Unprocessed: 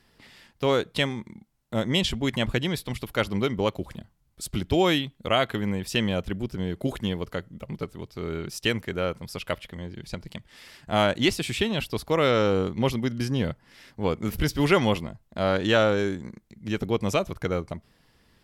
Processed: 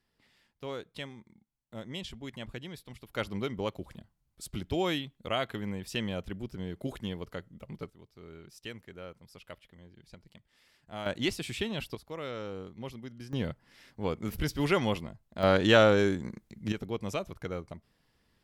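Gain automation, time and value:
-16 dB
from 3.13 s -8.5 dB
from 7.9 s -17.5 dB
from 11.06 s -8 dB
from 11.95 s -17 dB
from 13.33 s -6.5 dB
from 15.43 s 0 dB
from 16.72 s -9.5 dB

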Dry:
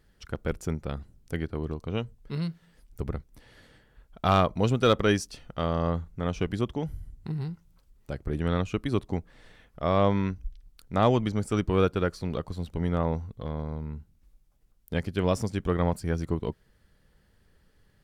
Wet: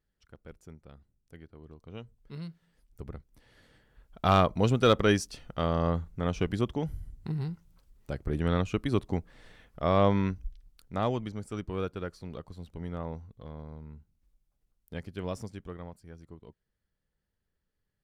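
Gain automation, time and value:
1.6 s -18.5 dB
2.19 s -9.5 dB
3.11 s -9.5 dB
4.32 s -0.5 dB
10.29 s -0.5 dB
11.39 s -10 dB
15.43 s -10 dB
15.96 s -20 dB

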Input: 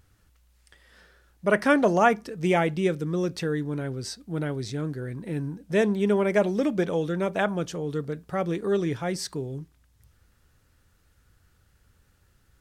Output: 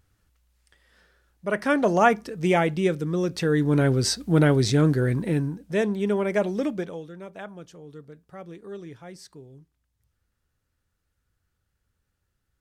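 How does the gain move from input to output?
1.46 s -5 dB
2.01 s +1.5 dB
3.31 s +1.5 dB
3.81 s +11 dB
5.13 s +11 dB
5.72 s -1.5 dB
6.68 s -1.5 dB
7.09 s -13.5 dB

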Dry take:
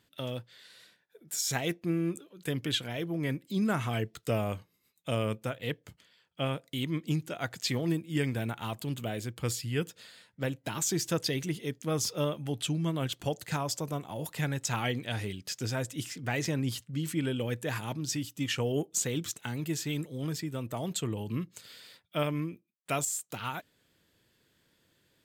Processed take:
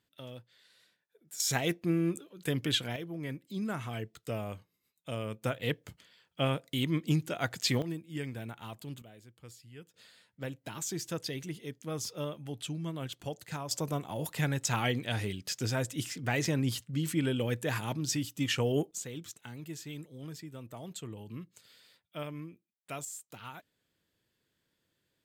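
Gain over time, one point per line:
-9.5 dB
from 1.4 s +1 dB
from 2.96 s -6.5 dB
from 5.43 s +2 dB
from 7.82 s -8 dB
from 9.02 s -19 dB
from 9.94 s -6.5 dB
from 13.71 s +1 dB
from 18.91 s -9.5 dB

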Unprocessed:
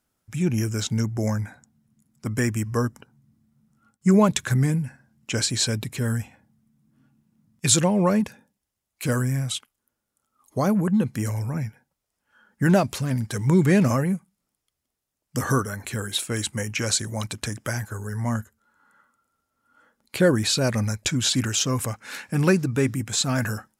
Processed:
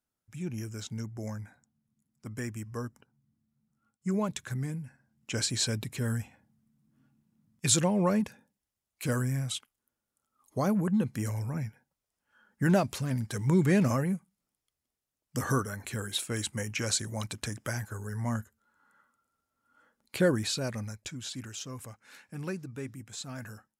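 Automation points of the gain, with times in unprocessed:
4.83 s -13 dB
5.44 s -6 dB
20.23 s -6 dB
21.19 s -17 dB

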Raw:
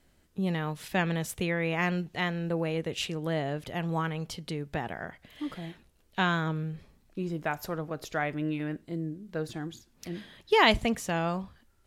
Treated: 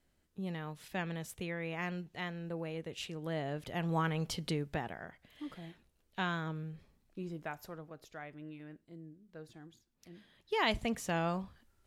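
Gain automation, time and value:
2.97 s -10 dB
4.45 s +1.5 dB
5.02 s -8.5 dB
7.27 s -8.5 dB
8.16 s -16.5 dB
10.13 s -16.5 dB
11.1 s -4 dB

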